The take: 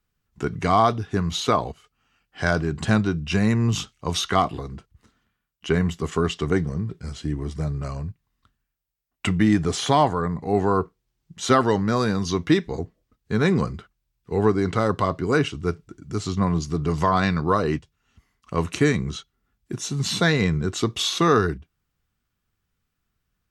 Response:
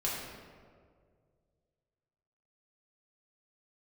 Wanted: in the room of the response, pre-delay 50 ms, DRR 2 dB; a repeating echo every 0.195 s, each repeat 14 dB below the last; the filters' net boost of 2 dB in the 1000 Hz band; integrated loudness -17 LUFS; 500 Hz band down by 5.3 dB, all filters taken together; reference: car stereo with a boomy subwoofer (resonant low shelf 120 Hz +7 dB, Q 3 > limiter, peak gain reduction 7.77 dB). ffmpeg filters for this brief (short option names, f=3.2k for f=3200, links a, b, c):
-filter_complex "[0:a]equalizer=f=500:t=o:g=-7.5,equalizer=f=1k:t=o:g=4.5,aecho=1:1:195|390:0.2|0.0399,asplit=2[a][b];[1:a]atrim=start_sample=2205,adelay=50[c];[b][c]afir=irnorm=-1:irlink=0,volume=-7.5dB[d];[a][d]amix=inputs=2:normalize=0,lowshelf=f=120:t=q:w=3:g=7,volume=4.5dB,alimiter=limit=-6.5dB:level=0:latency=1"